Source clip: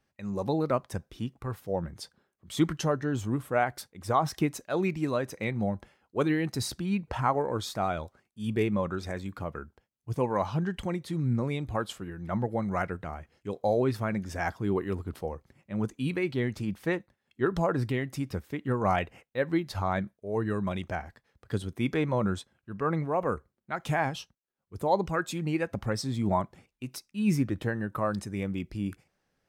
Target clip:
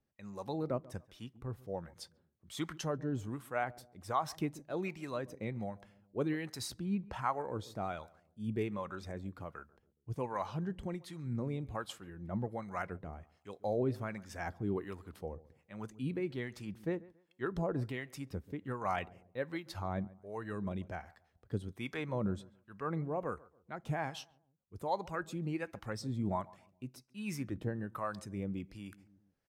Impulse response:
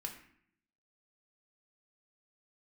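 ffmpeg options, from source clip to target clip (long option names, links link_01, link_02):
-filter_complex "[0:a]asplit=2[link_01][link_02];[link_02]adelay=139,lowpass=frequency=840:poles=1,volume=-19dB,asplit=2[link_03][link_04];[link_04]adelay=139,lowpass=frequency=840:poles=1,volume=0.39,asplit=2[link_05][link_06];[link_06]adelay=139,lowpass=frequency=840:poles=1,volume=0.39[link_07];[link_01][link_03][link_05][link_07]amix=inputs=4:normalize=0,acrossover=split=670[link_08][link_09];[link_08]aeval=exprs='val(0)*(1-0.7/2+0.7/2*cos(2*PI*1.3*n/s))':channel_layout=same[link_10];[link_09]aeval=exprs='val(0)*(1-0.7/2-0.7/2*cos(2*PI*1.3*n/s))':channel_layout=same[link_11];[link_10][link_11]amix=inputs=2:normalize=0,volume=-5.5dB"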